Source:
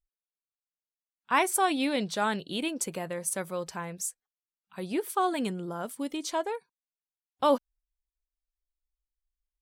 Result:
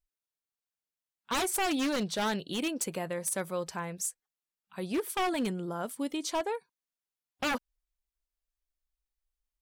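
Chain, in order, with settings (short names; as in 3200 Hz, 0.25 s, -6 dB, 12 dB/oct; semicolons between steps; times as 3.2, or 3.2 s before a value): wavefolder -24 dBFS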